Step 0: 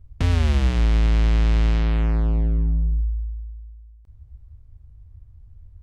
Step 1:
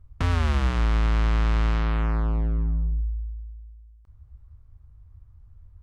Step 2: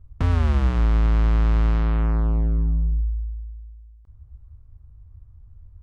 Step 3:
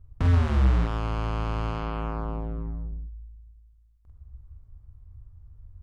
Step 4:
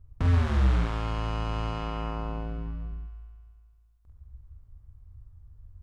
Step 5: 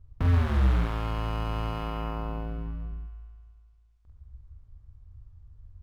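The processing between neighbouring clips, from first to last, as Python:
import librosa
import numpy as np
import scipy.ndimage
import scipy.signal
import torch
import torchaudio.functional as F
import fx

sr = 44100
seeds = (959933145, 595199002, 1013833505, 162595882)

y1 = fx.peak_eq(x, sr, hz=1200.0, db=10.0, octaves=1.1)
y1 = y1 * 10.0 ** (-4.0 / 20.0)
y2 = fx.tilt_shelf(y1, sr, db=4.5, hz=970.0)
y2 = y2 * 10.0 ** (-1.0 / 20.0)
y3 = fx.doubler(y2, sr, ms=46.0, db=-3)
y3 = y3 * 10.0 ** (-3.0 / 20.0)
y4 = fx.echo_wet_highpass(y3, sr, ms=70, feedback_pct=78, hz=1400.0, wet_db=-4)
y4 = y4 * 10.0 ** (-2.0 / 20.0)
y5 = np.interp(np.arange(len(y4)), np.arange(len(y4))[::3], y4[::3])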